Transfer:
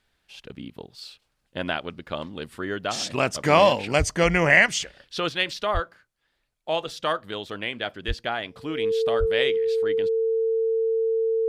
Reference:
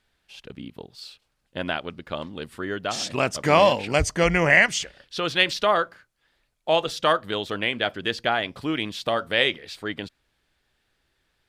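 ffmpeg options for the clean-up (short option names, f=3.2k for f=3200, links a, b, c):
-filter_complex "[0:a]bandreject=f=450:w=30,asplit=3[a][b][c];[a]afade=t=out:st=5.73:d=0.02[d];[b]highpass=f=140:w=0.5412,highpass=f=140:w=1.3066,afade=t=in:st=5.73:d=0.02,afade=t=out:st=5.85:d=0.02[e];[c]afade=t=in:st=5.85:d=0.02[f];[d][e][f]amix=inputs=3:normalize=0,asplit=3[g][h][i];[g]afade=t=out:st=8.07:d=0.02[j];[h]highpass=f=140:w=0.5412,highpass=f=140:w=1.3066,afade=t=in:st=8.07:d=0.02,afade=t=out:st=8.19:d=0.02[k];[i]afade=t=in:st=8.19:d=0.02[l];[j][k][l]amix=inputs=3:normalize=0,asplit=3[m][n][o];[m]afade=t=out:st=9.19:d=0.02[p];[n]highpass=f=140:w=0.5412,highpass=f=140:w=1.3066,afade=t=in:st=9.19:d=0.02,afade=t=out:st=9.31:d=0.02[q];[o]afade=t=in:st=9.31:d=0.02[r];[p][q][r]amix=inputs=3:normalize=0,asetnsamples=n=441:p=0,asendcmd='5.29 volume volume 5dB',volume=0dB"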